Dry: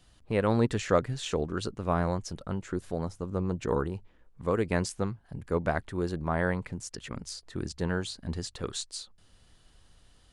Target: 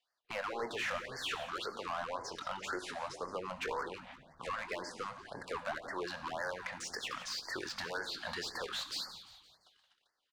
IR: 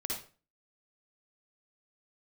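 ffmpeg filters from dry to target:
-filter_complex "[0:a]agate=range=-35dB:threshold=-52dB:ratio=16:detection=peak,acrossover=split=2600[a][b];[b]acompressor=threshold=-47dB:ratio=4:attack=1:release=60[c];[a][c]amix=inputs=2:normalize=0,acrossover=split=530 6000:gain=0.0708 1 0.251[d][e][f];[d][e][f]amix=inputs=3:normalize=0,alimiter=limit=-21dB:level=0:latency=1:release=318,acompressor=threshold=-49dB:ratio=3,asplit=2[g][h];[h]highpass=f=720:p=1,volume=22dB,asoftclip=type=tanh:threshold=-32.5dB[i];[g][i]amix=inputs=2:normalize=0,lowpass=f=4.4k:p=1,volume=-6dB,asplit=2[j][k];[k]adelay=22,volume=-12dB[l];[j][l]amix=inputs=2:normalize=0,asplit=6[m][n][o][p][q][r];[n]adelay=172,afreqshift=-110,volume=-13.5dB[s];[o]adelay=344,afreqshift=-220,volume=-19.5dB[t];[p]adelay=516,afreqshift=-330,volume=-25.5dB[u];[q]adelay=688,afreqshift=-440,volume=-31.6dB[v];[r]adelay=860,afreqshift=-550,volume=-37.6dB[w];[m][s][t][u][v][w]amix=inputs=6:normalize=0,asplit=2[x][y];[1:a]atrim=start_sample=2205,asetrate=35280,aresample=44100[z];[y][z]afir=irnorm=-1:irlink=0,volume=-13.5dB[aa];[x][aa]amix=inputs=2:normalize=0,afftfilt=real='re*(1-between(b*sr/1024,340*pow(3100/340,0.5+0.5*sin(2*PI*1.9*pts/sr))/1.41,340*pow(3100/340,0.5+0.5*sin(2*PI*1.9*pts/sr))*1.41))':imag='im*(1-between(b*sr/1024,340*pow(3100/340,0.5+0.5*sin(2*PI*1.9*pts/sr))/1.41,340*pow(3100/340,0.5+0.5*sin(2*PI*1.9*pts/sr))*1.41))':win_size=1024:overlap=0.75,volume=3dB"

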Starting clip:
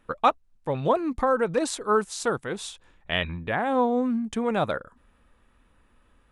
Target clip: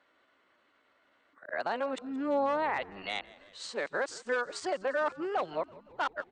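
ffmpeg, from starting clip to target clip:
-filter_complex "[0:a]areverse,aresample=16000,volume=17dB,asoftclip=hard,volume=-17dB,aresample=44100,highpass=390,alimiter=limit=-21.5dB:level=0:latency=1:release=271,lowpass=f=3.5k:p=1,asplit=2[a][b];[b]asplit=5[c][d][e][f][g];[c]adelay=171,afreqshift=-58,volume=-21dB[h];[d]adelay=342,afreqshift=-116,volume=-24.9dB[i];[e]adelay=513,afreqshift=-174,volume=-28.8dB[j];[f]adelay=684,afreqshift=-232,volume=-32.6dB[k];[g]adelay=855,afreqshift=-290,volume=-36.5dB[l];[h][i][j][k][l]amix=inputs=5:normalize=0[m];[a][m]amix=inputs=2:normalize=0,asetrate=50951,aresample=44100,atempo=0.865537"

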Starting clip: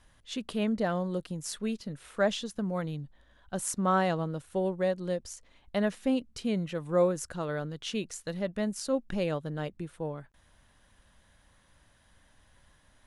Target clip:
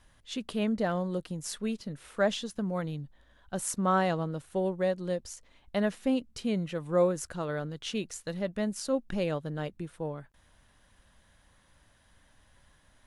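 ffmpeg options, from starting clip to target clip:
-ar 48000 -c:a aac -b:a 96k

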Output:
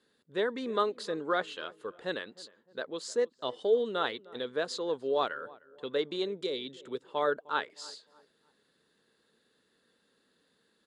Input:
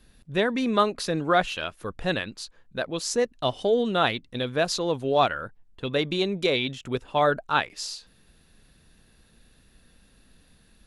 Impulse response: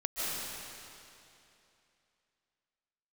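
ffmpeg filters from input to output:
-filter_complex "[0:a]asettb=1/sr,asplit=3[a][b][c];[a]atrim=end=6.414[d];[b]atrim=start=6.41:end=7.04,asetpts=PTS-STARTPTS,afade=t=in:d=0.004:c=qsin,afade=t=out:st=0.626:d=0.004:c=qsin,acrossover=split=420|3000[e][f][g];[f]acompressor=threshold=-37dB:ratio=6[h];[e][h][g]amix=inputs=3:normalize=0[i];[c]atrim=start=7.036[j];[d][i]acrossfade=d=0.004:c1=hsin:c2=qsin[k];[k][j]acrossfade=d=0.004:c1=qsin:c2=hsin,highpass=320,equalizer=f=440:t=q:w=4:g=6,equalizer=f=710:t=q:w=4:g=-7,equalizer=f=2.5k:t=q:w=4:g=-10,equalizer=f=5.8k:t=q:w=4:g=-10,lowpass=f=8.1k:w=0.5412,lowpass=f=8.1k:w=1.3066,asplit=2[l][m];[m]adelay=306,lowpass=f=1.2k:p=1,volume=-20dB,asplit=2[n][o];[o]adelay=306,lowpass=f=1.2k:p=1,volume=0.43,asplit=2[p][q];[q]adelay=306,lowpass=f=1.2k:p=1,volume=0.43[r];[l][n][p][r]amix=inputs=4:normalize=0,volume=-6.5dB"

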